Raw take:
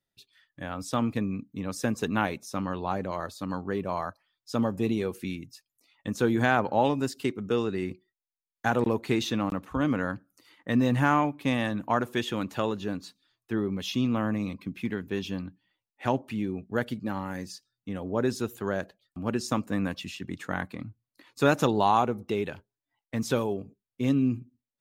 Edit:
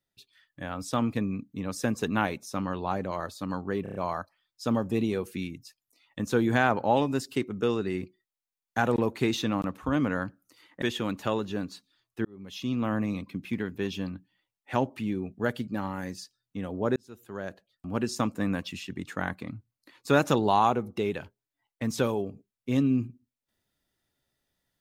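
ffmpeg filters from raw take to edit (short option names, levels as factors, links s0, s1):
-filter_complex "[0:a]asplit=8[s0][s1][s2][s3][s4][s5][s6][s7];[s0]atrim=end=3.862[s8];[s1]atrim=start=3.828:end=3.862[s9];[s2]atrim=start=3.828:end=3.862[s10];[s3]atrim=start=3.828:end=3.862[s11];[s4]atrim=start=3.828:end=10.702[s12];[s5]atrim=start=12.138:end=13.57,asetpts=PTS-STARTPTS,afade=t=out:st=1.428:d=0.004:c=hsin[s13];[s6]atrim=start=13.57:end=18.28,asetpts=PTS-STARTPTS,afade=t=in:d=0.69,afade=t=out:st=4.706:d=0.004:c=hsin[s14];[s7]atrim=start=18.28,asetpts=PTS-STARTPTS,afade=t=in:d=0.97[s15];[s8][s9]acrossfade=d=0.004:c1=hsin:c2=hsin[s16];[s16][s10]acrossfade=d=0.004:c1=hsin:c2=hsin[s17];[s17][s11]acrossfade=d=0.004:c1=hsin:c2=hsin[s18];[s18][s12]acrossfade=d=0.004:c1=hsin:c2=hsin[s19];[s13][s14][s15]concat=n=3:v=0:a=1[s20];[s19][s20]acrossfade=d=0.004:c1=hsin:c2=hsin"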